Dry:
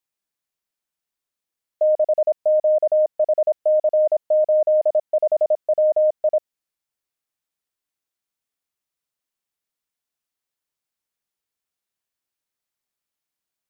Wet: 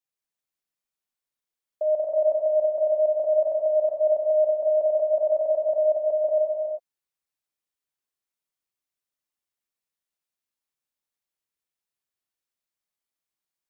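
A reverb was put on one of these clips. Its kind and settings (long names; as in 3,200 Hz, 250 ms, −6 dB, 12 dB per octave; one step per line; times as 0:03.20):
reverb whose tail is shaped and stops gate 420 ms flat, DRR −1 dB
level −7.5 dB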